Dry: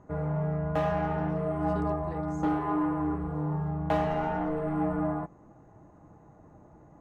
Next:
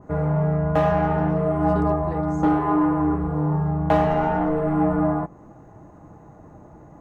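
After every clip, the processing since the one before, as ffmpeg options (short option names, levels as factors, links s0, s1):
-af "adynamicequalizer=threshold=0.00501:dfrequency=1800:dqfactor=0.7:tfrequency=1800:tqfactor=0.7:attack=5:release=100:ratio=0.375:range=2:mode=cutabove:tftype=highshelf,volume=2.66"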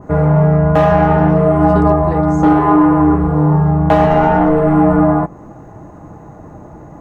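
-af "alimiter=level_in=3.76:limit=0.891:release=50:level=0:latency=1,volume=0.891"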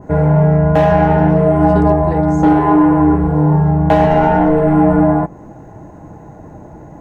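-af "bandreject=f=1200:w=5.1"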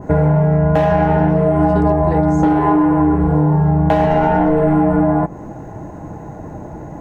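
-af "acompressor=threshold=0.178:ratio=6,volume=1.68"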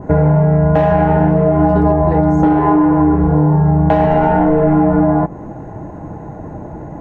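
-af "lowpass=f=2200:p=1,volume=1.26"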